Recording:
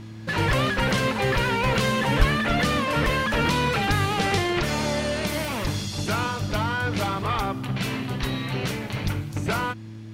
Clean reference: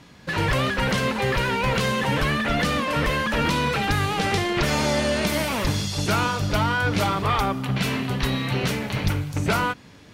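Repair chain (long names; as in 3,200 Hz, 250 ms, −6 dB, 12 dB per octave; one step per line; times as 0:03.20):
click removal
hum removal 109.8 Hz, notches 3
0:02.18–0:02.30: high-pass filter 140 Hz 24 dB per octave
0:04.59: level correction +3.5 dB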